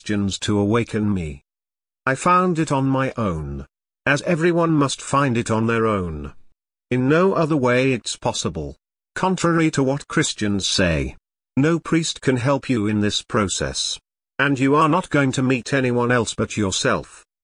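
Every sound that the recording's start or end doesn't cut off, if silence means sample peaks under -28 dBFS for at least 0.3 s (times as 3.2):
2.07–3.62
4.07–6.28
6.92–8.71
9.16–11.1
11.57–13.95
14.39–17.01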